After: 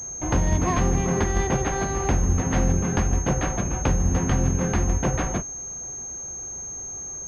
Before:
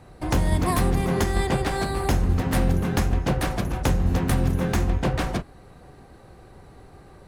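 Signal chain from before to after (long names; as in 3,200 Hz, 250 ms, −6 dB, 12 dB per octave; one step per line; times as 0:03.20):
switching amplifier with a slow clock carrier 6,400 Hz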